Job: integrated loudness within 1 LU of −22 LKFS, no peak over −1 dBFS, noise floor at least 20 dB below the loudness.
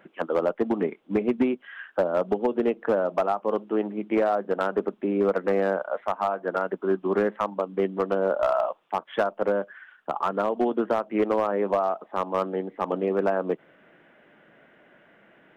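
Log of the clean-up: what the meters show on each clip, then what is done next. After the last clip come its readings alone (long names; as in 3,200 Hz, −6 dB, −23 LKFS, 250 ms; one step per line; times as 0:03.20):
share of clipped samples 0.8%; peaks flattened at −15.0 dBFS; integrated loudness −26.5 LKFS; sample peak −15.0 dBFS; target loudness −22.0 LKFS
→ clipped peaks rebuilt −15 dBFS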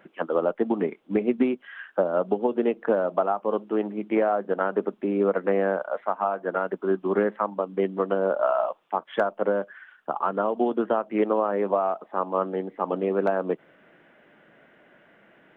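share of clipped samples 0.0%; integrated loudness −26.0 LKFS; sample peak −10.0 dBFS; target loudness −22.0 LKFS
→ level +4 dB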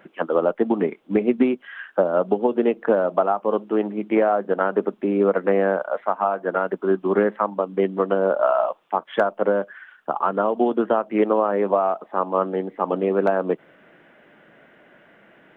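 integrated loudness −22.0 LKFS; sample peak −6.0 dBFS; background noise floor −55 dBFS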